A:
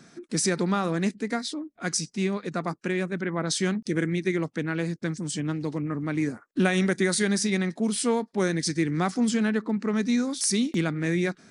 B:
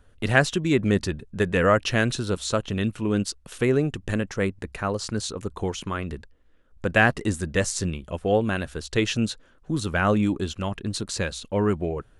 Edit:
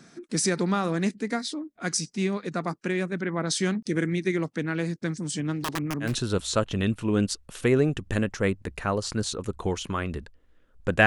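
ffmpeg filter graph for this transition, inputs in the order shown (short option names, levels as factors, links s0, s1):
-filter_complex "[0:a]asettb=1/sr,asplit=3[s0][s1][s2];[s0]atrim=end=5.524[s3];[s1]atrim=start=5.52:end=6.14,asetpts=PTS-STARTPTS,afade=t=in:d=0.004:c=qsin,afade=t=out:st=0.616:d=0.004:c=qsin,aeval=exprs='(mod(12.6*val(0)+1,2)-1)/12.6':c=same[s4];[s2]atrim=start=6.136[s5];[s3][s4]acrossfade=d=0.004:c1=hsin:c2=qsin[s6];[s6][s5]acrossfade=d=0.004:c1=qsin:c2=hsin,apad=whole_dur=11.06,atrim=end=11.06,atrim=end=6.14,asetpts=PTS-STARTPTS[s7];[1:a]atrim=start=1.97:end=7.03,asetpts=PTS-STARTPTS[s8];[s7][s8]acrossfade=d=0.14:c1=tri:c2=tri"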